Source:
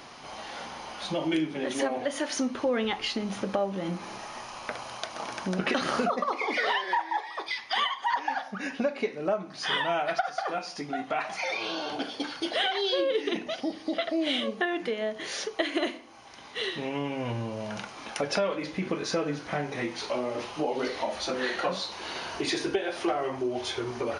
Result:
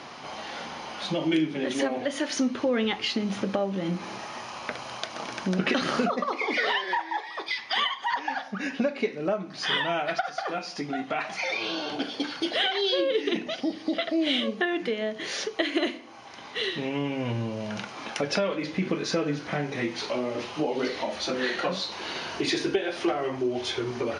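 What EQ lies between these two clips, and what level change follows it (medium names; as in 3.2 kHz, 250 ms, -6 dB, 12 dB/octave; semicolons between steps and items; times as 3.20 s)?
distance through air 62 m; dynamic bell 860 Hz, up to -6 dB, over -42 dBFS, Q 0.7; high-pass 96 Hz; +5.0 dB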